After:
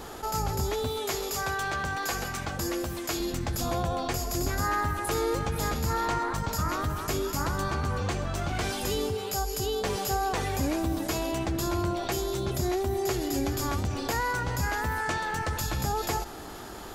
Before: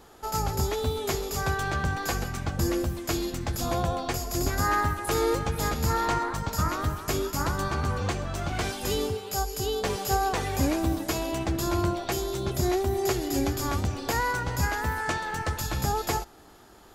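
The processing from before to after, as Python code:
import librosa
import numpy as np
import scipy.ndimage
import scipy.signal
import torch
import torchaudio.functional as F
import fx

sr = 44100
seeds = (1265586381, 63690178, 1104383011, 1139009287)

y = fx.low_shelf(x, sr, hz=300.0, db=-10.5, at=(0.87, 3.2))
y = fx.env_flatten(y, sr, amount_pct=50)
y = y * 10.0 ** (-4.5 / 20.0)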